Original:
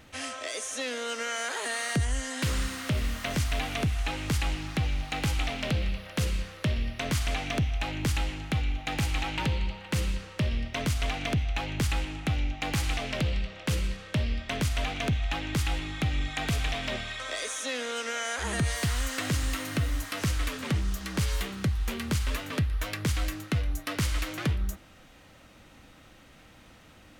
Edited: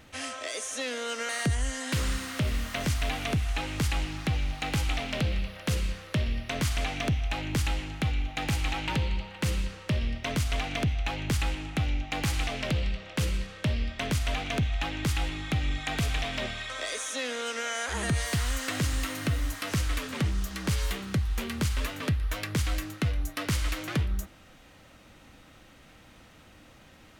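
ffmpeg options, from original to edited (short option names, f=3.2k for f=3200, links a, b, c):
-filter_complex "[0:a]asplit=2[a][b];[a]atrim=end=1.292[c];[b]atrim=start=1.788[d];[c][d]acrossfade=d=0.004:c1=hsin:c2=hsin"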